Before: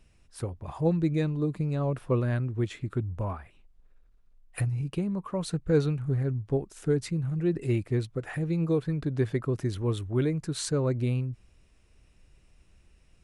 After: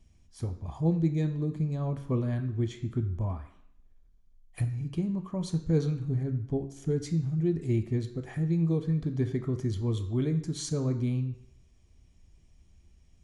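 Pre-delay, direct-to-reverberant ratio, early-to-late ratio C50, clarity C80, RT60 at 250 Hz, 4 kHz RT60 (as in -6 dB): 7 ms, 7.0 dB, 11.0 dB, 13.5 dB, 0.70 s, 0.70 s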